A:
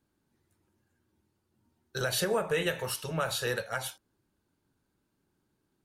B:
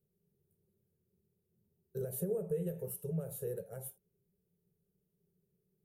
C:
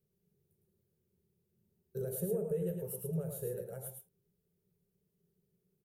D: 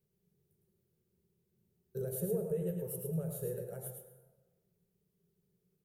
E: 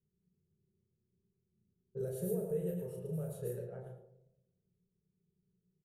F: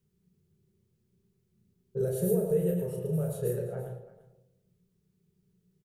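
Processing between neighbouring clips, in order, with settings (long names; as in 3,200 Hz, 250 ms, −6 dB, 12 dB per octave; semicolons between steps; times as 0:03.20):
drawn EQ curve 110 Hz 0 dB, 180 Hz +12 dB, 290 Hz −20 dB, 400 Hz +10 dB, 1,000 Hz −21 dB, 2,900 Hz −24 dB, 4,700 Hz −28 dB, 9,300 Hz −2 dB, 14,000 Hz +8 dB; downward compressor 1.5 to 1, threshold −34 dBFS, peak gain reduction 5.5 dB; level −6 dB
single-tap delay 108 ms −5.5 dB
dense smooth reverb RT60 1.3 s, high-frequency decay 0.5×, pre-delay 85 ms, DRR 10.5 dB
low-pass that shuts in the quiet parts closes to 310 Hz, open at −33 dBFS; double-tracking delay 33 ms −4.5 dB; level −2.5 dB
single-tap delay 340 ms −16.5 dB; level +9 dB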